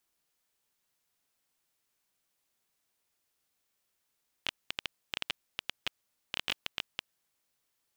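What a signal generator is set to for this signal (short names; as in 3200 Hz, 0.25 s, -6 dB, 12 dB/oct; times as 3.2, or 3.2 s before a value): random clicks 10/s -14 dBFS 2.69 s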